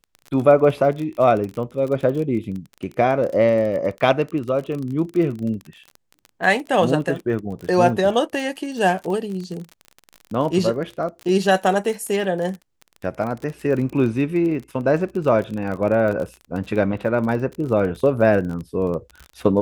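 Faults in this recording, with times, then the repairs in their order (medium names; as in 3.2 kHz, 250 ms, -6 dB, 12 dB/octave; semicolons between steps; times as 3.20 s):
crackle 35 per s -28 dBFS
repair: de-click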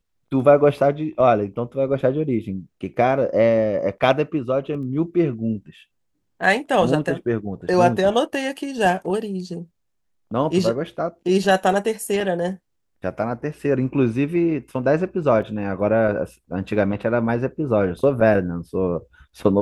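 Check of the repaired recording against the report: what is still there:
nothing left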